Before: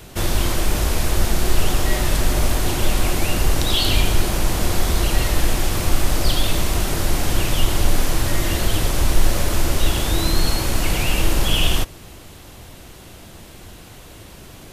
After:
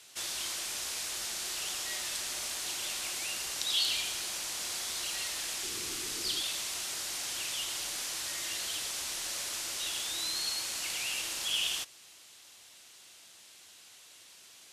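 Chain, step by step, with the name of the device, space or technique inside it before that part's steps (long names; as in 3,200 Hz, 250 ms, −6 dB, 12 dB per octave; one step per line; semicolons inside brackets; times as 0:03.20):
0:05.63–0:06.41: low shelf with overshoot 490 Hz +6 dB, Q 3
piezo pickup straight into a mixer (low-pass filter 6,700 Hz 12 dB per octave; first difference)
level −1.5 dB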